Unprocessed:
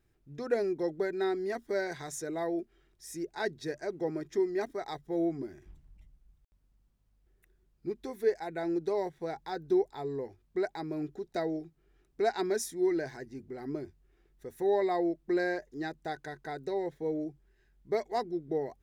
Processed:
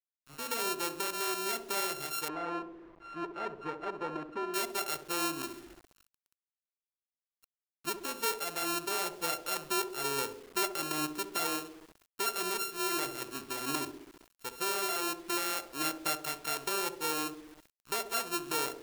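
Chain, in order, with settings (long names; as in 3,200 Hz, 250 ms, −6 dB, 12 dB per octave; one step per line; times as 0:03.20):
samples sorted by size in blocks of 32 samples
brickwall limiter −26 dBFS, peak gain reduction 9 dB
spectral tilt +2.5 dB per octave
feedback echo with a band-pass in the loop 66 ms, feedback 69%, band-pass 330 Hz, level −6.5 dB
speech leveller within 3 dB 0.5 s
background noise brown −71 dBFS
bit reduction 9 bits
0:02.28–0:04.54: low-pass filter 1,500 Hz 12 dB per octave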